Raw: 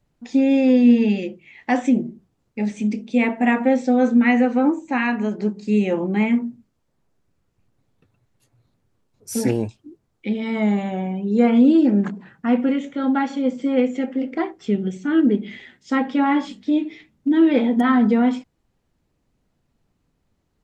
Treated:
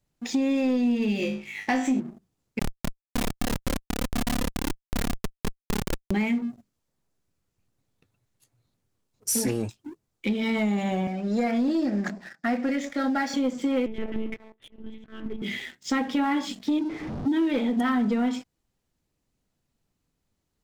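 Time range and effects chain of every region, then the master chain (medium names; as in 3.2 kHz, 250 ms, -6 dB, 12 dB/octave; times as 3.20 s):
1.18–2.00 s: low-pass 8.2 kHz + flutter echo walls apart 3.3 m, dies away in 0.33 s
2.59–6.11 s: tone controls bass -2 dB, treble +13 dB + AM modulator 35 Hz, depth 95% + Schmitt trigger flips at -18 dBFS
11.07–13.34 s: partial rectifier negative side -3 dB + cabinet simulation 250–8200 Hz, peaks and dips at 420 Hz -8 dB, 650 Hz +8 dB, 1 kHz -8 dB, 1.8 kHz +7 dB, 3 kHz -9 dB, 5 kHz +10 dB
13.86–15.42 s: compression 4:1, threshold -25 dBFS + slow attack 623 ms + monotone LPC vocoder at 8 kHz 220 Hz
16.79–17.28 s: jump at every zero crossing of -29 dBFS + low-pass 1 kHz
whole clip: treble shelf 3.4 kHz +10.5 dB; compression 4:1, threshold -25 dBFS; waveshaping leveller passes 2; trim -5 dB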